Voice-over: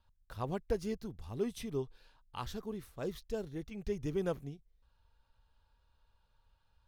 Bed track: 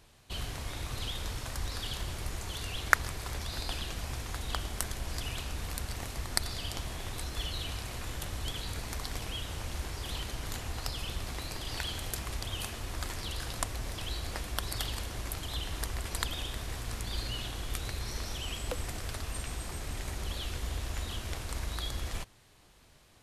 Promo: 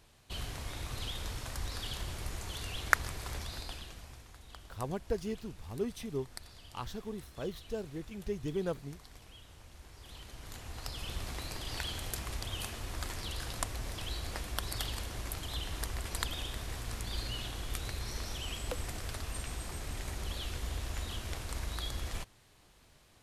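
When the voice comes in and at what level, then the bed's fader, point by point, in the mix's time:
4.40 s, 0.0 dB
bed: 3.38 s -2.5 dB
4.34 s -16.5 dB
9.78 s -16.5 dB
11.18 s -2 dB

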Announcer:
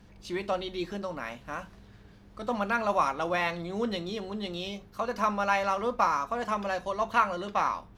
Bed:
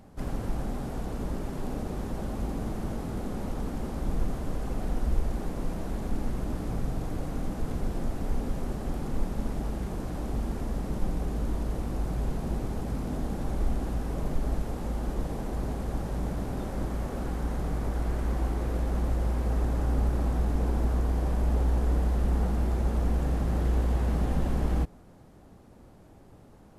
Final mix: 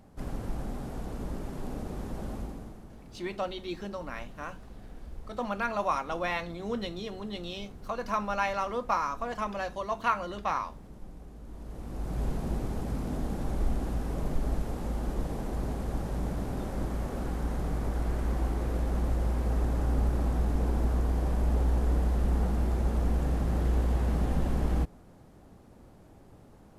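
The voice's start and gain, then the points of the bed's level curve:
2.90 s, -3.0 dB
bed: 2.34 s -3.5 dB
2.88 s -16.5 dB
11.42 s -16.5 dB
12.22 s -1 dB

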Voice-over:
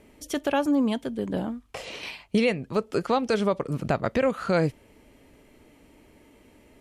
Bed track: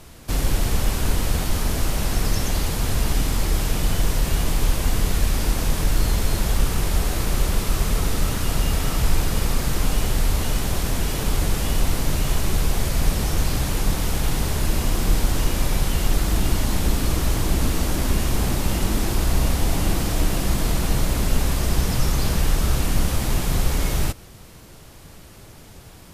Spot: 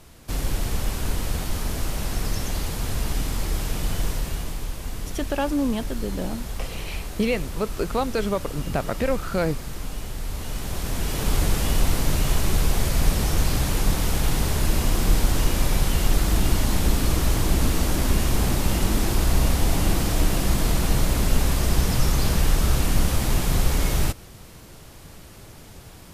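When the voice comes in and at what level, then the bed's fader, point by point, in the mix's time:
4.85 s, -1.0 dB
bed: 4.07 s -4.5 dB
4.68 s -11 dB
10.19 s -11 dB
11.34 s 0 dB

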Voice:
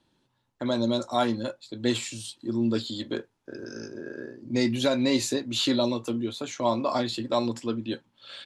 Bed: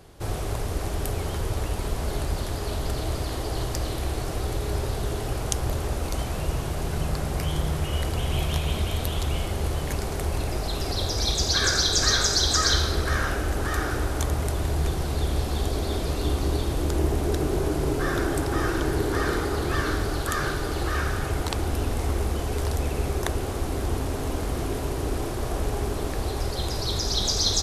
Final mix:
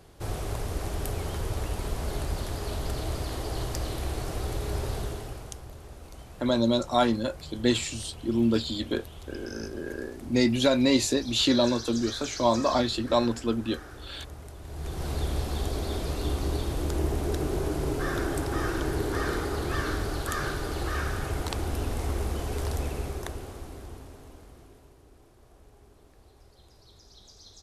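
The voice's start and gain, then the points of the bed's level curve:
5.80 s, +2.0 dB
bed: 4.98 s -3.5 dB
5.68 s -17.5 dB
14.61 s -17.5 dB
15.07 s -4 dB
22.8 s -4 dB
25.05 s -28.5 dB

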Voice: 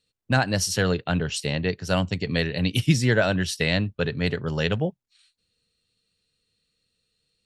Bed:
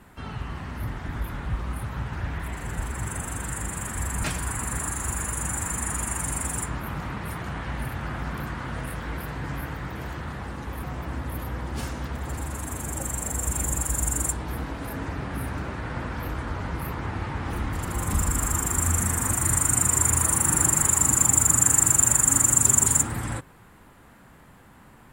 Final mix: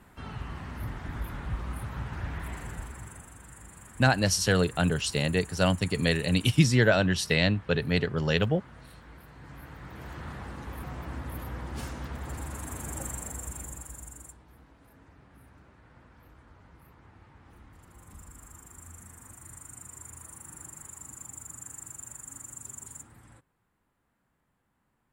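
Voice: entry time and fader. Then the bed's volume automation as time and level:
3.70 s, -1.0 dB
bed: 2.56 s -4.5 dB
3.33 s -17.5 dB
9.3 s -17.5 dB
10.26 s -5.5 dB
13.04 s -5.5 dB
14.47 s -24.5 dB

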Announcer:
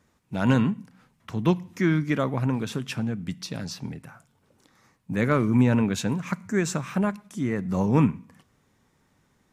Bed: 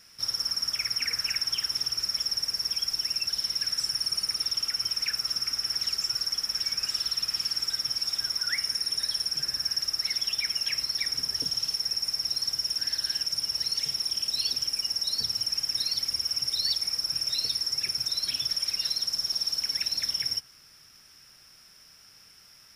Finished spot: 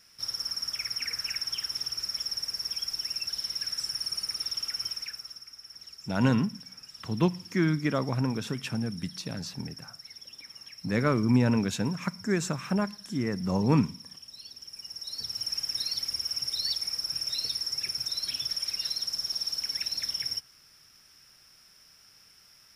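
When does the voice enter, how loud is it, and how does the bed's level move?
5.75 s, -3.0 dB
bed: 4.86 s -4 dB
5.47 s -18 dB
14.52 s -18 dB
15.5 s -3 dB

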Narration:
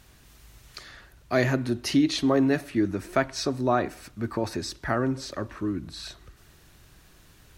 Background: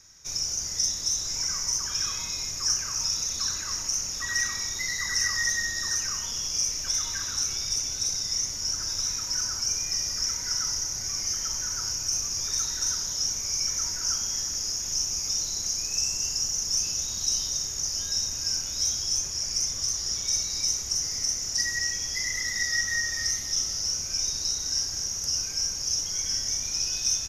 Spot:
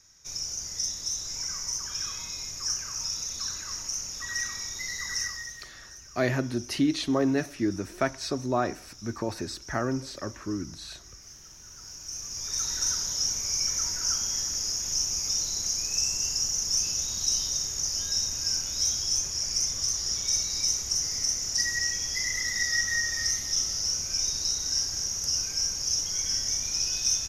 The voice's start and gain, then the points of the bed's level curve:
4.85 s, -3.0 dB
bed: 5.2 s -4.5 dB
5.65 s -19.5 dB
11.56 s -19.5 dB
12.72 s 0 dB

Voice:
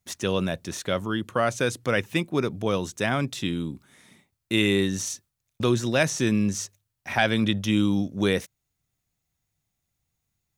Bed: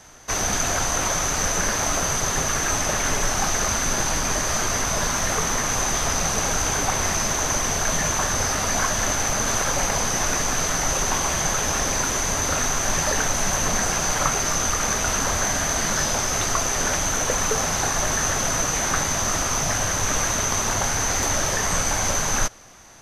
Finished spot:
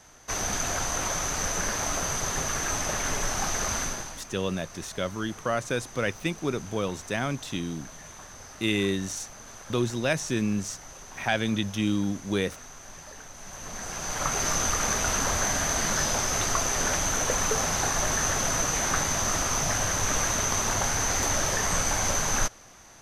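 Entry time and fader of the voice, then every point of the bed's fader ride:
4.10 s, -4.0 dB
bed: 3.82 s -6 dB
4.27 s -22.5 dB
13.33 s -22.5 dB
14.44 s -3.5 dB

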